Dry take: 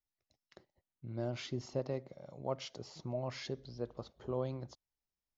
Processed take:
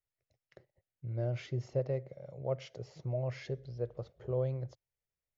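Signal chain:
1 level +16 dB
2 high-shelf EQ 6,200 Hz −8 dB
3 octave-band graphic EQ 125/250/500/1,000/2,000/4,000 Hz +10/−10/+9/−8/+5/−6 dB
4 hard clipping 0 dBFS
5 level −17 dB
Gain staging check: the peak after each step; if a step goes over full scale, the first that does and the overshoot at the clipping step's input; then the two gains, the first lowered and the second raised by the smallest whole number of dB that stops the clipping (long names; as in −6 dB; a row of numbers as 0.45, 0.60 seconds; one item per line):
−6.5, −7.0, −4.0, −4.0, −21.0 dBFS
no step passes full scale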